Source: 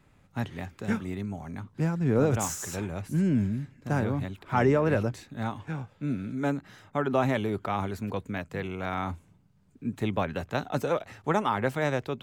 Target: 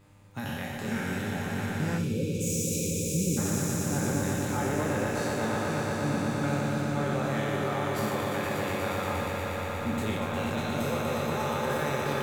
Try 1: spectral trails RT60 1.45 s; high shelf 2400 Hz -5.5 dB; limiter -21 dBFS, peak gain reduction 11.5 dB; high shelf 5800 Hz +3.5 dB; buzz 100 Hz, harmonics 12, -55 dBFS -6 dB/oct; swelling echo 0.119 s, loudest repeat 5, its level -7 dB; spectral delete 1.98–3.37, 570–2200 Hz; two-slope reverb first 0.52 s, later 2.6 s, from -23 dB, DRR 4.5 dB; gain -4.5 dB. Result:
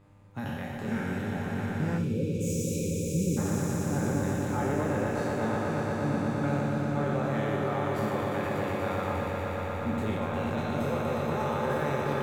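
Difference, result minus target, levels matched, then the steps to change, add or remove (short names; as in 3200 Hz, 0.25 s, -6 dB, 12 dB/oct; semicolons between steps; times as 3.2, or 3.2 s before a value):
4000 Hz band -6.0 dB
change: first high shelf 2400 Hz +5.5 dB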